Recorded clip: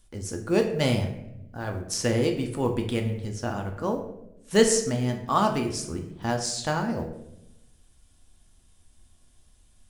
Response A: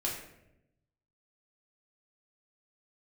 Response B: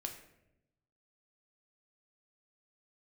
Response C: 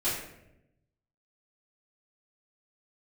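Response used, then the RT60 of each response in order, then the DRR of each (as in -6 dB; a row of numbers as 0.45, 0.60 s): B; 0.85, 0.85, 0.85 s; -4.0, 3.0, -14.0 dB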